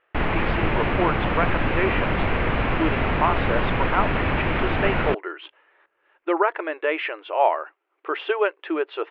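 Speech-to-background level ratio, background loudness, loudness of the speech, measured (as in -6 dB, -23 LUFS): -2.5 dB, -24.0 LUFS, -26.5 LUFS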